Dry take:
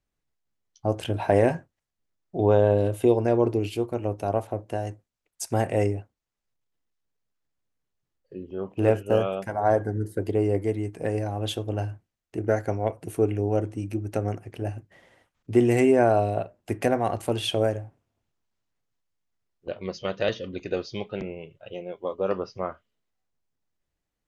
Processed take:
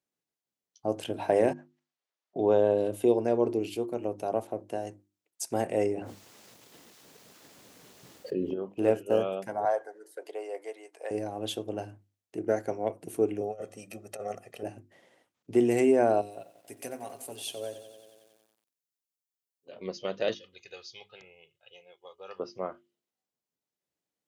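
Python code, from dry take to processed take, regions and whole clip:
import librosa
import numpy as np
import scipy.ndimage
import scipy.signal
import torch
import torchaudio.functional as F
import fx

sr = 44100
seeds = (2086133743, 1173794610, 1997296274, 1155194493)

y = fx.chain(x, sr, fx.highpass(hz=720.0, slope=12),
    fx.air_absorb(metres=110.0),
    fx.over_compress(threshold_db=-54.0, ratio=-1.0), at=(1.53, 2.36))
y = fx.chain(y, sr, fx.high_shelf(hz=6500.0, db=-4.5),
    fx.env_flatten(amount_pct=70), at=(5.77, 8.54))
y = fx.chain(y, sr, fx.highpass(hz=570.0, slope=24),
    fx.high_shelf(hz=9700.0, db=-7.0), at=(9.65, 11.11))
y = fx.chain(y, sr, fx.highpass(hz=480.0, slope=6),
    fx.comb(ms=1.6, depth=0.82),
    fx.over_compress(threshold_db=-30.0, ratio=-0.5), at=(13.41, 14.63))
y = fx.chain(y, sr, fx.pre_emphasis(coefficient=0.8),
    fx.comb(ms=7.3, depth=0.54),
    fx.echo_crushed(ms=91, feedback_pct=80, bits=9, wet_db=-14.0), at=(16.21, 19.73))
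y = fx.chain(y, sr, fx.tone_stack(knobs='10-0-10'),
    fx.comb(ms=2.4, depth=0.48), at=(20.34, 22.4))
y = scipy.signal.sosfilt(scipy.signal.butter(2, 210.0, 'highpass', fs=sr, output='sos'), y)
y = fx.peak_eq(y, sr, hz=1500.0, db=-5.5, octaves=2.0)
y = fx.hum_notches(y, sr, base_hz=50, count=7)
y = y * 10.0 ** (-1.5 / 20.0)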